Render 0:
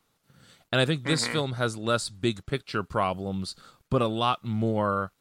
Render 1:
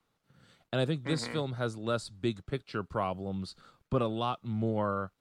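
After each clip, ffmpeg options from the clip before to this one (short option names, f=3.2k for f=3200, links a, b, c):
-filter_complex "[0:a]acrossover=split=160|1000|3500[a][b][c][d];[c]alimiter=level_in=1.5dB:limit=-24dB:level=0:latency=1:release=493,volume=-1.5dB[e];[a][b][e][d]amix=inputs=4:normalize=0,highshelf=f=5.5k:g=-11,volume=-4.5dB"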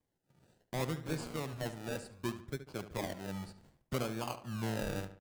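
-filter_complex "[0:a]acrossover=split=5000[a][b];[a]acrusher=samples=32:mix=1:aa=0.000001:lfo=1:lforange=19.2:lforate=0.66[c];[c][b]amix=inputs=2:normalize=0,asplit=2[d][e];[e]adelay=72,lowpass=f=3.5k:p=1,volume=-11.5dB,asplit=2[f][g];[g]adelay=72,lowpass=f=3.5k:p=1,volume=0.44,asplit=2[h][i];[i]adelay=72,lowpass=f=3.5k:p=1,volume=0.44,asplit=2[j][k];[k]adelay=72,lowpass=f=3.5k:p=1,volume=0.44[l];[d][f][h][j][l]amix=inputs=5:normalize=0,volume=-6.5dB"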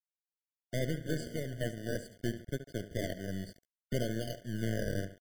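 -af "aeval=exprs='val(0)*gte(abs(val(0)),0.00251)':c=same,aeval=exprs='0.0708*(cos(1*acos(clip(val(0)/0.0708,-1,1)))-cos(1*PI/2))+0.00891*(cos(4*acos(clip(val(0)/0.0708,-1,1)))-cos(4*PI/2))+0.00447*(cos(8*acos(clip(val(0)/0.0708,-1,1)))-cos(8*PI/2))':c=same,afftfilt=real='re*eq(mod(floor(b*sr/1024/720),2),0)':imag='im*eq(mod(floor(b*sr/1024/720),2),0)':win_size=1024:overlap=0.75,volume=2dB"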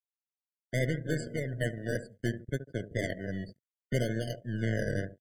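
-af "afftdn=nr=29:nf=-48,equalizer=f=125:t=o:w=1:g=8,equalizer=f=250:t=o:w=1:g=3,equalizer=f=500:t=o:w=1:g=6,equalizer=f=2k:t=o:w=1:g=12,equalizer=f=8k:t=o:w=1:g=8,equalizer=f=16k:t=o:w=1:g=9,volume=-3.5dB"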